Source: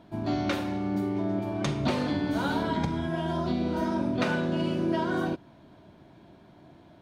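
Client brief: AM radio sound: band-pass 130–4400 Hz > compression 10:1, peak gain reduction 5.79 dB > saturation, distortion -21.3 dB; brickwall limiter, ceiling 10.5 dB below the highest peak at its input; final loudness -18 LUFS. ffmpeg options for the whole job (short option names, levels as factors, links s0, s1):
-af "alimiter=limit=0.0631:level=0:latency=1,highpass=130,lowpass=4400,acompressor=threshold=0.0224:ratio=10,asoftclip=threshold=0.0335,volume=10.6"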